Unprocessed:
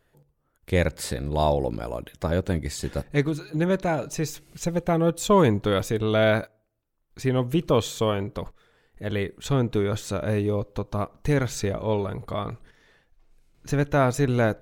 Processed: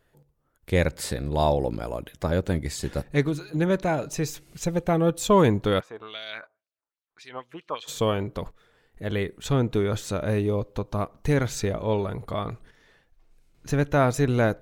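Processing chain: 5.79–7.87 s: LFO band-pass sine 1.3 Hz -> 7.3 Hz 960–4700 Hz

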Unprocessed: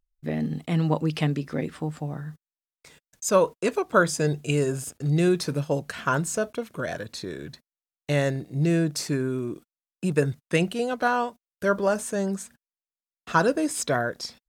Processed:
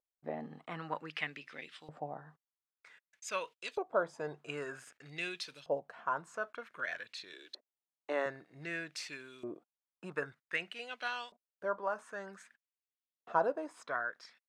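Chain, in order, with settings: LFO band-pass saw up 0.53 Hz 600–3800 Hz; gain riding within 3 dB 0.5 s; 7.33–8.26 s: resonant low shelf 220 Hz -13.5 dB, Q 3; trim -2.5 dB

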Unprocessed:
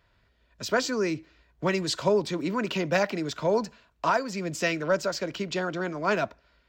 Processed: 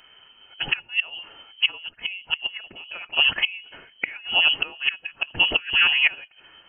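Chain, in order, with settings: dynamic bell 1.3 kHz, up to -4 dB, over -42 dBFS, Q 1.7; inverted gate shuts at -20 dBFS, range -26 dB; formant-preserving pitch shift -1.5 st; frequency inversion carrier 3.1 kHz; loudness maximiser +20 dB; trim -6.5 dB

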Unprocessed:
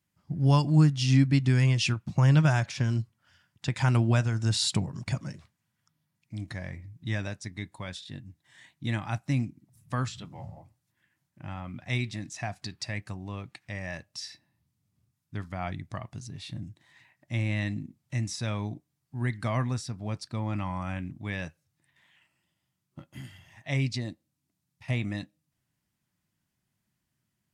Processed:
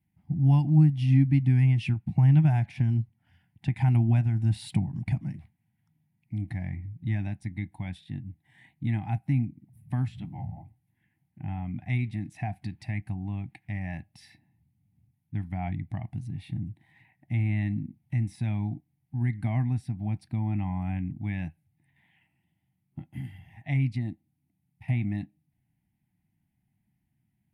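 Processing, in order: FFT filter 200 Hz 0 dB, 320 Hz -4 dB, 490 Hz -26 dB, 780 Hz -1 dB, 1.2 kHz -23 dB, 2.1 kHz -6 dB, 4.7 kHz -23 dB, 6.9 kHz -28 dB, 10 kHz -11 dB; in parallel at +1.5 dB: compression, threshold -36 dBFS, peak gain reduction 18 dB

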